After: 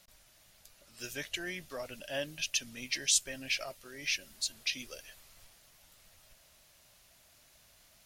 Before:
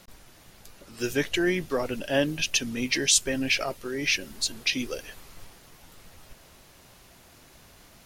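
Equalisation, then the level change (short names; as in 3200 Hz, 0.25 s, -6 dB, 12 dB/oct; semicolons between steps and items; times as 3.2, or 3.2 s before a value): passive tone stack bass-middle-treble 5-5-5; bell 610 Hz +10.5 dB 0.45 oct; 0.0 dB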